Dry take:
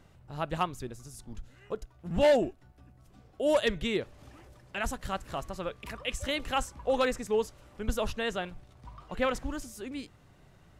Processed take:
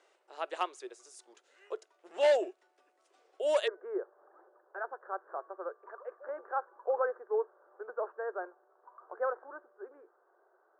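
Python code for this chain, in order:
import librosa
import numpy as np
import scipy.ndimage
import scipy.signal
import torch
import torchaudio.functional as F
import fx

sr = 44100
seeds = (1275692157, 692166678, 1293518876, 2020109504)

y = fx.cheby1_bandpass(x, sr, low_hz=360.0, high_hz=fx.steps((0.0, 9500.0), (3.66, 1600.0)), order=5)
y = y * 10.0 ** (-2.5 / 20.0)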